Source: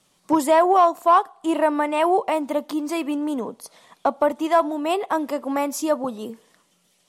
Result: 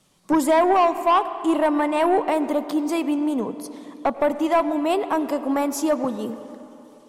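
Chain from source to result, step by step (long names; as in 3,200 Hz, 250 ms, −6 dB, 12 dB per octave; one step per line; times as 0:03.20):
low-shelf EQ 290 Hz +6.5 dB
soft clipping −11 dBFS, distortion −16 dB
convolution reverb RT60 3.3 s, pre-delay 82 ms, DRR 12 dB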